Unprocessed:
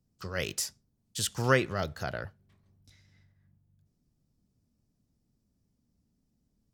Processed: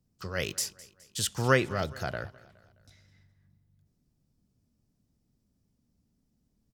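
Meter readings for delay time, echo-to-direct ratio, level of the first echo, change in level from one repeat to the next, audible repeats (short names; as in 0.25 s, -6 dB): 0.209 s, -19.5 dB, -20.5 dB, -6.5 dB, 3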